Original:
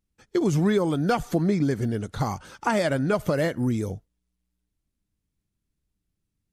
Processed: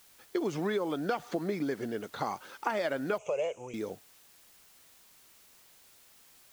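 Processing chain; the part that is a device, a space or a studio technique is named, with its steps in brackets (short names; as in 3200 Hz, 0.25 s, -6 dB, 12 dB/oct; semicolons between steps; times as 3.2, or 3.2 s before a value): baby monitor (BPF 350–4500 Hz; compressor, threshold -25 dBFS, peak gain reduction 6.5 dB; white noise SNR 24 dB); 3.18–3.74 EQ curve 100 Hz 0 dB, 290 Hz -24 dB, 440 Hz +2 dB, 1000 Hz -2 dB, 1800 Hz -21 dB, 2500 Hz +9 dB, 4300 Hz -22 dB, 6600 Hz +9 dB, 12000 Hz -21 dB; gain -2 dB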